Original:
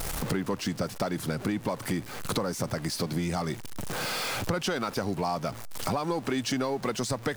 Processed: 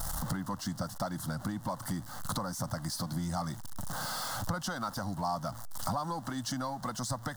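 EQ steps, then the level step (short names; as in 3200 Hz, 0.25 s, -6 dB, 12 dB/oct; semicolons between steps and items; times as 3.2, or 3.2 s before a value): fixed phaser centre 1000 Hz, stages 4; -1.5 dB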